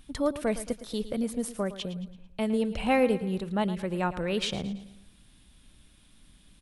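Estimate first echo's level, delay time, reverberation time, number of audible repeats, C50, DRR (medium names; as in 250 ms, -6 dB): -14.0 dB, 111 ms, no reverb, 3, no reverb, no reverb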